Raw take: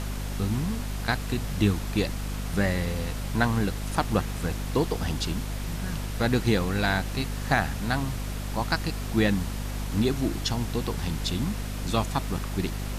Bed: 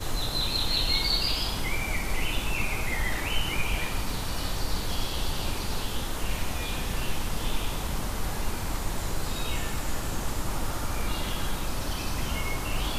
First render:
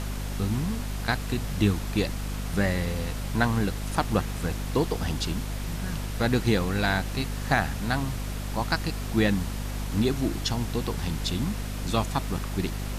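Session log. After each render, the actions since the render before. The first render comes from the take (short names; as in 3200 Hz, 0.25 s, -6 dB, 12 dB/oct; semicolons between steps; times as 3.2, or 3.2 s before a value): nothing audible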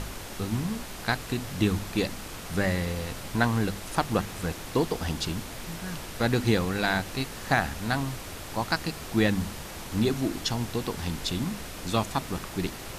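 de-hum 50 Hz, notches 5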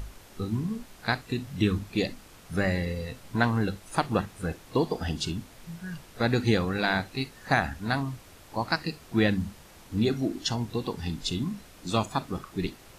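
noise print and reduce 12 dB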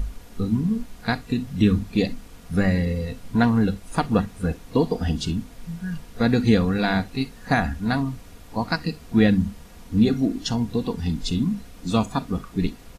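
low shelf 280 Hz +10.5 dB; comb 4.2 ms, depth 46%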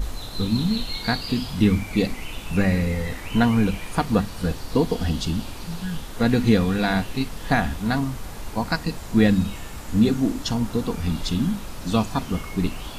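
add bed -5.5 dB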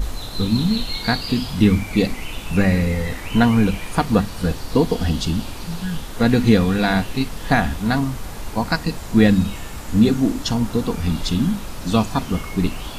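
gain +3.5 dB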